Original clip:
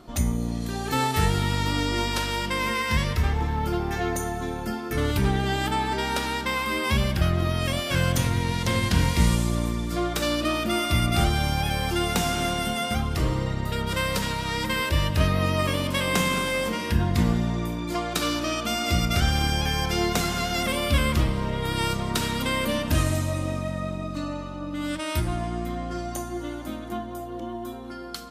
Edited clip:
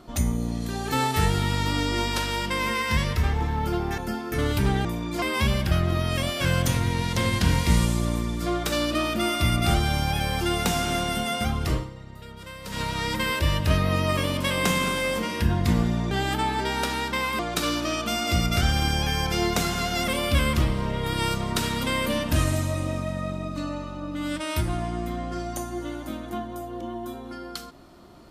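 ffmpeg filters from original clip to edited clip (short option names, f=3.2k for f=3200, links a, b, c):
-filter_complex "[0:a]asplit=8[a][b][c][d][e][f][g][h];[a]atrim=end=3.982[i];[b]atrim=start=4.568:end=5.442[j];[c]atrim=start=17.608:end=17.982[k];[d]atrim=start=6.718:end=13.44,asetpts=PTS-STARTPTS,afade=t=out:st=6.512:d=0.21:c=qua:silence=0.188365[l];[e]atrim=start=13.44:end=14.1,asetpts=PTS-STARTPTS,volume=-14.5dB[m];[f]atrim=start=14.1:end=17.612,asetpts=PTS-STARTPTS,afade=t=in:d=0.21:c=qua:silence=0.188365[n];[g]atrim=start=5.438:end=6.722[o];[h]atrim=start=17.978[p];[i][j]acrossfade=d=0.004:c1=hsin:c2=hsin[q];[q][k]acrossfade=d=0.004:c1=hsin:c2=hsin[r];[l][m][n]concat=n=3:v=0:a=1[s];[r][s]acrossfade=d=0.004:c1=hsin:c2=hsin[t];[t][o]acrossfade=d=0.004:c1=hsin:c2=hsin[u];[u][p]acrossfade=d=0.004:c1=hsin:c2=hsin"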